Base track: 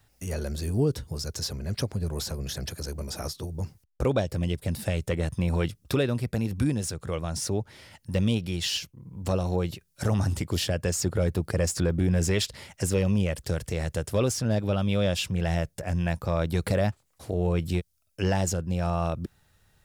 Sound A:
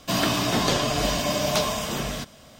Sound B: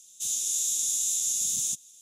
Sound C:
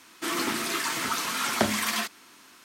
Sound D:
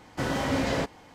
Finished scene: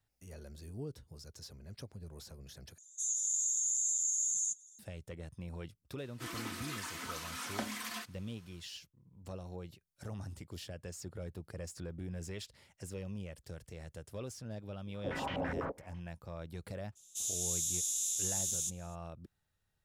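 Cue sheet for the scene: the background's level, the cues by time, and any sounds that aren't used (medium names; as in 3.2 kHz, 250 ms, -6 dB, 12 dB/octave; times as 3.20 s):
base track -18.5 dB
2.78 s: replace with B -5 dB + spectral contrast enhancement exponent 2.4
5.98 s: add C -14.5 dB + comb 4 ms, depth 35%
14.86 s: add D -13.5 dB + step-sequenced low-pass 12 Hz 410–2900 Hz
16.95 s: add B -7.5 dB, fades 0.02 s
not used: A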